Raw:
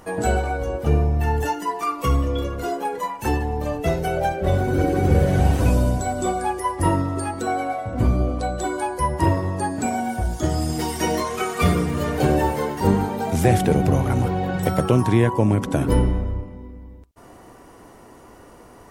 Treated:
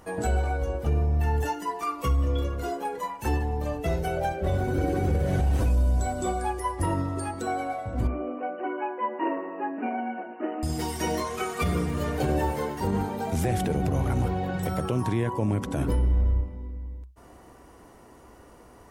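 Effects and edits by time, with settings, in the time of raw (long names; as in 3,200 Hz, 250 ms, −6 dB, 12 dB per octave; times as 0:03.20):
0:08.07–0:10.63: linear-phase brick-wall band-pass 210–3,000 Hz
whole clip: parametric band 63 Hz +11 dB 0.3 octaves; brickwall limiter −11 dBFS; level −5.5 dB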